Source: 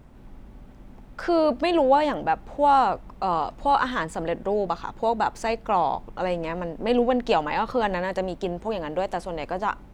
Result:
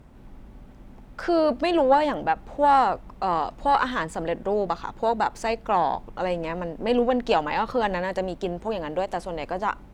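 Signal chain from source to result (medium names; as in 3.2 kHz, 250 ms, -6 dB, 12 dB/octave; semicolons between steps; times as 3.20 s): Chebyshev shaper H 2 -17 dB, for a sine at -8 dBFS; endings held to a fixed fall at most 540 dB/s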